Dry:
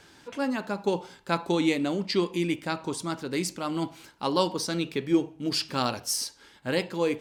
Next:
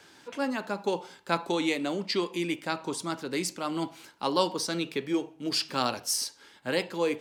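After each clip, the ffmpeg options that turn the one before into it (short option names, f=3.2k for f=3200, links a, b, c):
-filter_complex "[0:a]highpass=f=210:p=1,acrossover=split=370|5600[a][b][c];[a]alimiter=level_in=4dB:limit=-24dB:level=0:latency=1:release=400,volume=-4dB[d];[d][b][c]amix=inputs=3:normalize=0"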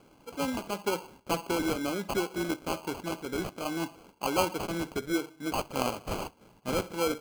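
-af "adynamicsmooth=sensitivity=6.5:basefreq=5.3k,acrusher=samples=24:mix=1:aa=0.000001,volume=-1.5dB"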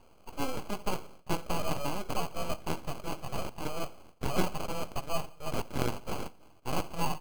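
-af "aeval=exprs='abs(val(0))':c=same,aecho=1:1:88|176|264:0.0668|0.0287|0.0124,volume=1dB"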